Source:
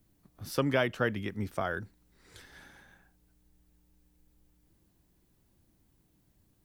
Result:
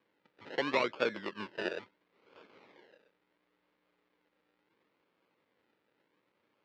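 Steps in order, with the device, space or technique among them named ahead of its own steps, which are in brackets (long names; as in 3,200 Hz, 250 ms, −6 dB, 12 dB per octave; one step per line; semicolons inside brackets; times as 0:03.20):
circuit-bent sampling toy (sample-and-hold swept by an LFO 32×, swing 60% 0.73 Hz; loudspeaker in its box 410–4,200 Hz, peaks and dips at 470 Hz +3 dB, 710 Hz −8 dB, 2,100 Hz +4 dB)
0:01.09–0:01.72: EQ curve with evenly spaced ripples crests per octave 1.3, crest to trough 7 dB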